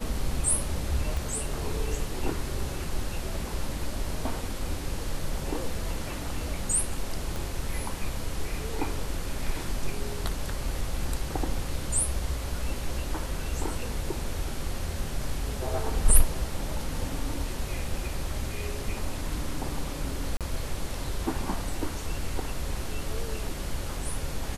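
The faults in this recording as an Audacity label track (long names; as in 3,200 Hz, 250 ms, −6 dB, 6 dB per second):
1.170000	1.170000	click
7.360000	7.360000	click
20.370000	20.410000	drop-out 37 ms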